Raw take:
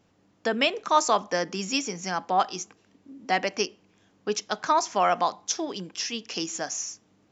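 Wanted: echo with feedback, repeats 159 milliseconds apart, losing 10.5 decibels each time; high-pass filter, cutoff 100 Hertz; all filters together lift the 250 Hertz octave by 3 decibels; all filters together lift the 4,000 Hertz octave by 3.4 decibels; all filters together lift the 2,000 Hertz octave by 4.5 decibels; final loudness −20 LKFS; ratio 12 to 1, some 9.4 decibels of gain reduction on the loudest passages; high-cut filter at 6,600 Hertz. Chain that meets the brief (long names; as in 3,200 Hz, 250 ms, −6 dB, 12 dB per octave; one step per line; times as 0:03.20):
high-pass filter 100 Hz
low-pass filter 6,600 Hz
parametric band 250 Hz +4 dB
parametric band 2,000 Hz +4.5 dB
parametric band 4,000 Hz +4 dB
downward compressor 12 to 1, threshold −23 dBFS
repeating echo 159 ms, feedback 30%, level −10.5 dB
level +9.5 dB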